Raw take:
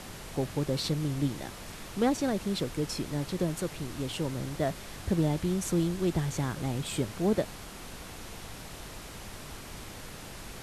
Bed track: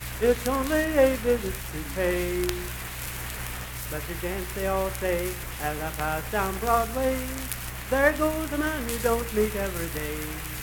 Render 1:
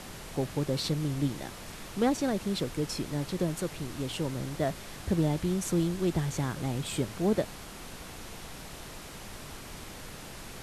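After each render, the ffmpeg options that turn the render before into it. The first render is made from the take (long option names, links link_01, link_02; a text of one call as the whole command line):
ffmpeg -i in.wav -af "bandreject=frequency=50:width_type=h:width=4,bandreject=frequency=100:width_type=h:width=4" out.wav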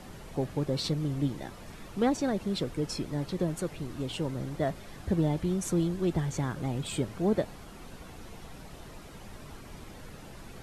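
ffmpeg -i in.wav -af "afftdn=noise_reduction=9:noise_floor=-45" out.wav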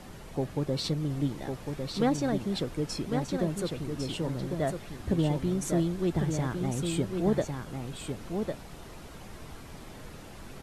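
ffmpeg -i in.wav -af "aecho=1:1:1102:0.531" out.wav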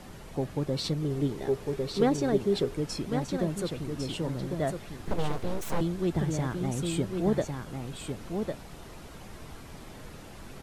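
ffmpeg -i in.wav -filter_complex "[0:a]asettb=1/sr,asplit=3[link_01][link_02][link_03];[link_01]atrim=end=1.024[link_04];[link_02]atrim=start=1.02:end=2.77,asetpts=PTS-STARTPTS,afade=type=in:duration=0.004:curve=qsin,afade=type=out:start_time=1.746:duration=0.004:curve=qsin,equalizer=frequency=410:width=7.3:gain=14.5[link_05];[link_03]atrim=start=2.766[link_06];[link_04][link_05]acrossfade=duration=0.004:curve1=hsin:curve2=qsin[link_07];[link_07][link_06]acrossfade=duration=0.004:curve1=qsin:curve2=hsin,asettb=1/sr,asplit=3[link_08][link_09][link_10];[link_08]atrim=end=5.054[link_11];[link_09]atrim=start=5.05:end=5.81,asetpts=PTS-STARTPTS,afade=type=in:duration=0.004:curve=qsin,afade=type=out:start_time=0.756:duration=0.004:curve=qsin,aeval=exprs='abs(val(0))':channel_layout=same[link_12];[link_10]atrim=start=5.806[link_13];[link_11][link_12]acrossfade=duration=0.004:curve1=hsin:curve2=qsin[link_14];[link_14][link_13]acrossfade=duration=0.004:curve1=qsin:curve2=hsin" out.wav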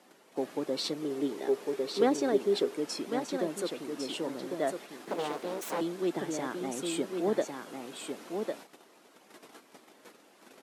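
ffmpeg -i in.wav -af "agate=range=-11dB:threshold=-42dB:ratio=16:detection=peak,highpass=frequency=260:width=0.5412,highpass=frequency=260:width=1.3066" out.wav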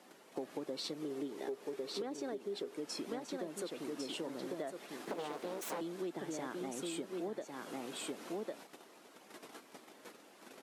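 ffmpeg -i in.wav -af "alimiter=limit=-21dB:level=0:latency=1:release=377,acompressor=threshold=-38dB:ratio=6" out.wav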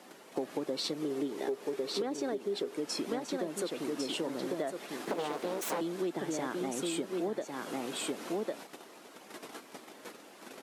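ffmpeg -i in.wav -af "volume=6.5dB" out.wav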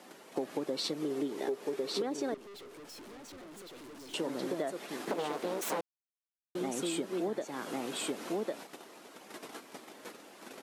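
ffmpeg -i in.wav -filter_complex "[0:a]asettb=1/sr,asplit=3[link_01][link_02][link_03];[link_01]atrim=end=2.344[link_04];[link_02]atrim=start=2.34:end=4.14,asetpts=PTS-STARTPTS,afade=type=in:duration=0.004:curve=qsin,afade=type=out:start_time=1.796:duration=0.004:curve=qsin,aeval=exprs='(tanh(251*val(0)+0.2)-tanh(0.2))/251':channel_layout=same[link_05];[link_03]atrim=start=4.136[link_06];[link_04][link_05]acrossfade=duration=0.004:curve1=hsin:curve2=qsin[link_07];[link_07][link_06]acrossfade=duration=0.004:curve1=qsin:curve2=hsin,asplit=3[link_08][link_09][link_10];[link_08]atrim=end=5.81,asetpts=PTS-STARTPTS,afade=type=out:start_time=5.806:duration=0.004:curve=hsin[link_11];[link_09]atrim=start=5.81:end=6.55,asetpts=PTS-STARTPTS,volume=0[link_12];[link_10]atrim=start=6.55,asetpts=PTS-STARTPTS,afade=type=in:duration=0.004:curve=hsin[link_13];[link_11][link_12][link_13]concat=n=3:v=0:a=1" out.wav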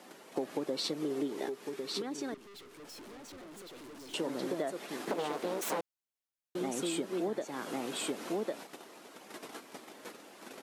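ffmpeg -i in.wav -filter_complex "[0:a]asettb=1/sr,asplit=3[link_01][link_02][link_03];[link_01]atrim=end=1.464[link_04];[link_02]atrim=start=1.46:end=2.8,asetpts=PTS-STARTPTS,afade=type=in:duration=0.004:curve=qsin,afade=type=out:start_time=1.336:duration=0.004:curve=qsin,equalizer=frequency=560:width=1.2:gain=-8[link_05];[link_03]atrim=start=2.796[link_06];[link_04][link_05]acrossfade=duration=0.004:curve1=hsin:curve2=qsin[link_07];[link_07][link_06]acrossfade=duration=0.004:curve1=qsin:curve2=hsin" out.wav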